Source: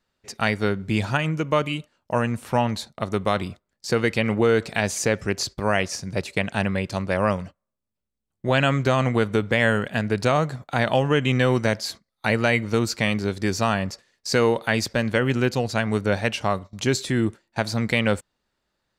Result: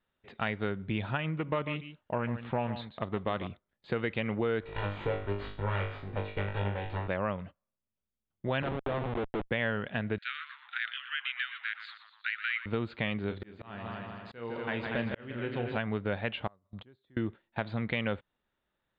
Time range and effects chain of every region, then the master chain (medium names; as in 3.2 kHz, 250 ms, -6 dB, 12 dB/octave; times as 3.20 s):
1.33–3.47 s: delay 144 ms -13 dB + loudspeaker Doppler distortion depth 0.16 ms
4.61–7.08 s: comb filter that takes the minimum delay 2.1 ms + treble shelf 3 kHz -8 dB + flutter echo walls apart 3.4 m, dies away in 0.4 s
8.62–9.51 s: high-pass 130 Hz 6 dB/octave + Schmitt trigger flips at -23.5 dBFS + overdrive pedal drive 21 dB, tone 1.7 kHz, clips at -16 dBFS
10.18–12.66 s: steep high-pass 1.4 kHz 72 dB/octave + frequency-shifting echo 120 ms, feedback 50%, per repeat -140 Hz, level -13 dB
13.26–15.77 s: doubling 34 ms -9.5 dB + multi-head delay 79 ms, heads second and third, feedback 41%, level -8.5 dB + slow attack 764 ms
16.47–17.17 s: peaking EQ 2.6 kHz -10.5 dB 0.82 oct + inverted gate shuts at -25 dBFS, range -31 dB
whole clip: elliptic low-pass 3.6 kHz, stop band 40 dB; compression 2:1, threshold -26 dBFS; trim -5 dB